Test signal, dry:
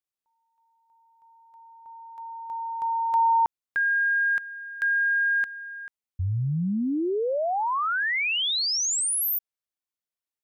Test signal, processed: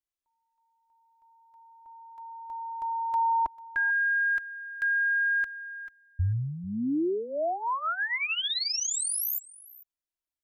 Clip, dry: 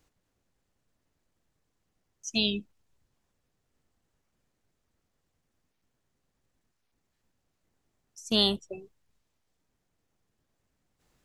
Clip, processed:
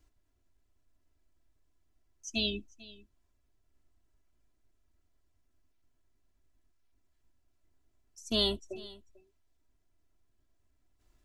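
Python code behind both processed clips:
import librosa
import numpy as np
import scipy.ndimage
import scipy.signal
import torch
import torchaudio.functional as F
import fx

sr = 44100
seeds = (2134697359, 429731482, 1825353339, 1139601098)

y = fx.low_shelf(x, sr, hz=110.0, db=11.0)
y = y + 0.67 * np.pad(y, (int(3.0 * sr / 1000.0), 0))[:len(y)]
y = y + 10.0 ** (-20.5 / 20.0) * np.pad(y, (int(444 * sr / 1000.0), 0))[:len(y)]
y = y * librosa.db_to_amplitude(-6.0)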